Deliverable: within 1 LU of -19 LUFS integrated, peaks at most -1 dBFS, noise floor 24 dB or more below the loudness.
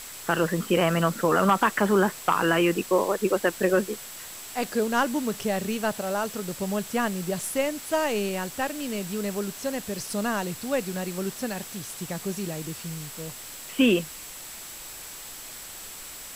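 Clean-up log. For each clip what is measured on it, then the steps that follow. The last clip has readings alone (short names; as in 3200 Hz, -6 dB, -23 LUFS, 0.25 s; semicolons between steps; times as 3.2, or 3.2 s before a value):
steady tone 7700 Hz; tone level -45 dBFS; noise floor -41 dBFS; noise floor target -51 dBFS; loudness -26.5 LUFS; peak -9.0 dBFS; loudness target -19.0 LUFS
-> notch 7700 Hz, Q 30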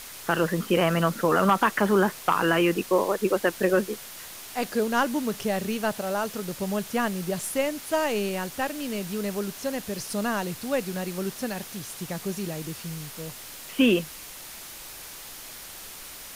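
steady tone none; noise floor -42 dBFS; noise floor target -51 dBFS
-> denoiser 9 dB, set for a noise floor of -42 dBFS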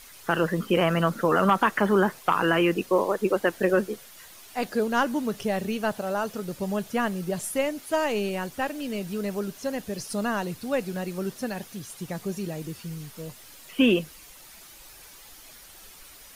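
noise floor -49 dBFS; noise floor target -51 dBFS
-> denoiser 6 dB, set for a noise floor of -49 dBFS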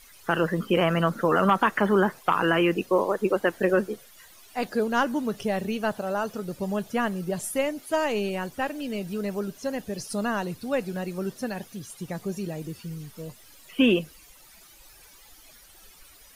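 noise floor -52 dBFS; loudness -26.5 LUFS; peak -9.0 dBFS; loudness target -19.0 LUFS
-> gain +7.5 dB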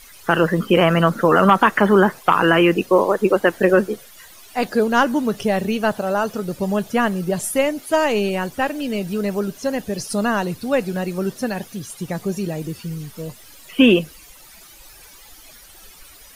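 loudness -19.0 LUFS; peak -1.5 dBFS; noise floor -45 dBFS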